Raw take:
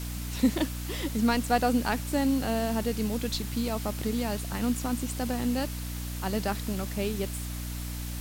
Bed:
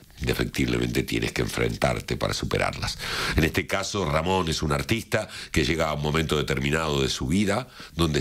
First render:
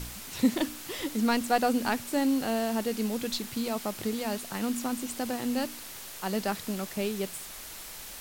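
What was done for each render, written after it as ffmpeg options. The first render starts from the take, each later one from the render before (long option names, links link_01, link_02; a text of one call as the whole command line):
ffmpeg -i in.wav -af "bandreject=frequency=60:width_type=h:width=4,bandreject=frequency=120:width_type=h:width=4,bandreject=frequency=180:width_type=h:width=4,bandreject=frequency=240:width_type=h:width=4,bandreject=frequency=300:width_type=h:width=4" out.wav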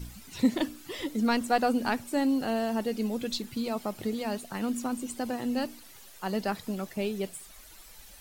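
ffmpeg -i in.wav -af "afftdn=noise_reduction=12:noise_floor=-43" out.wav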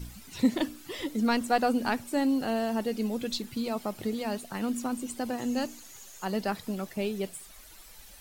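ffmpeg -i in.wav -filter_complex "[0:a]asettb=1/sr,asplit=3[link_01][link_02][link_03];[link_01]atrim=end=5.384[link_04];[link_02]atrim=start=5.38:end=6.25,asetpts=PTS-STARTPTS,afade=type=in:duration=0.004:curve=qsin,afade=type=out:start_time=0.866:duration=0.004:curve=qsin,equalizer=frequency=6700:width=5.5:gain=13.5[link_05];[link_03]atrim=start=6.246[link_06];[link_04][link_05]acrossfade=duration=0.004:curve1=hsin:curve2=qsin[link_07];[link_07][link_06]acrossfade=duration=0.004:curve1=qsin:curve2=hsin" out.wav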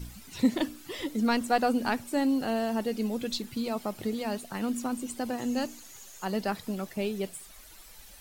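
ffmpeg -i in.wav -af anull out.wav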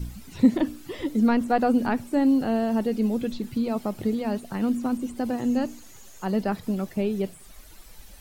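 ffmpeg -i in.wav -filter_complex "[0:a]acrossover=split=2600[link_01][link_02];[link_02]acompressor=threshold=-46dB:ratio=4:attack=1:release=60[link_03];[link_01][link_03]amix=inputs=2:normalize=0,lowshelf=frequency=460:gain=8.5" out.wav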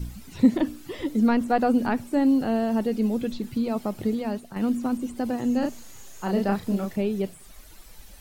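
ffmpeg -i in.wav -filter_complex "[0:a]asettb=1/sr,asplit=3[link_01][link_02][link_03];[link_01]atrim=end=5.594[link_04];[link_02]atrim=start=5.59:end=6.96,asetpts=PTS-STARTPTS,afade=type=in:duration=0.004:curve=qsin,afade=type=out:start_time=1.366:duration=0.004:curve=qsin,asplit=2[link_05][link_06];[link_06]adelay=35,volume=-3dB[link_07];[link_05][link_07]amix=inputs=2:normalize=0,atrim=end_sample=60417[link_08];[link_03]atrim=start=6.956[link_09];[link_04][link_08]acrossfade=duration=0.004:curve1=hsin:curve2=qsin[link_10];[link_10][link_09]acrossfade=duration=0.004:curve1=qsin:curve2=hsin,asplit=2[link_11][link_12];[link_11]atrim=end=4.56,asetpts=PTS-STARTPTS,afade=type=out:start_time=4.05:duration=0.51:curve=qsin:silence=0.398107[link_13];[link_12]atrim=start=4.56,asetpts=PTS-STARTPTS,afade=type=in:duration=0.004:curve=hsin:silence=0.398107[link_14];[link_13][link_14]concat=n=2:v=0:a=1" out.wav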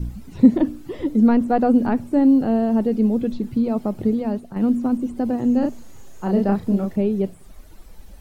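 ffmpeg -i in.wav -af "tiltshelf=frequency=1100:gain=6.5,bandreject=frequency=49.84:width_type=h:width=4,bandreject=frequency=99.68:width_type=h:width=4,bandreject=frequency=149.52:width_type=h:width=4" out.wav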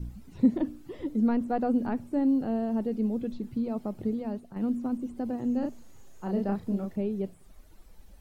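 ffmpeg -i in.wav -af "volume=-10dB" out.wav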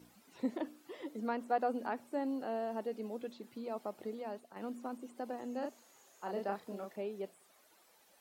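ffmpeg -i in.wav -af "highpass=580" out.wav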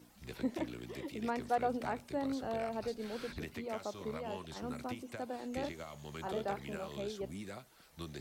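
ffmpeg -i in.wav -i bed.wav -filter_complex "[1:a]volume=-22.5dB[link_01];[0:a][link_01]amix=inputs=2:normalize=0" out.wav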